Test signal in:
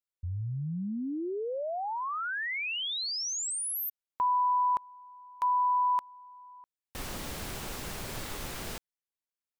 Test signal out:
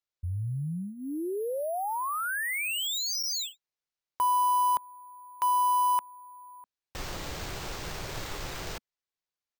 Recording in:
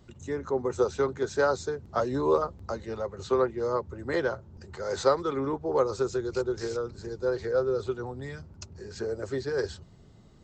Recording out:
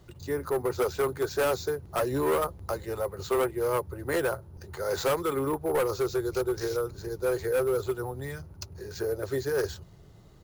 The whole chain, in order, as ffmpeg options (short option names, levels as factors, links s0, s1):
-af "equalizer=f=230:w=5.3:g=-13.5,aresample=16000,asoftclip=type=hard:threshold=0.0596,aresample=44100,acrusher=samples=4:mix=1:aa=0.000001,volume=1.33"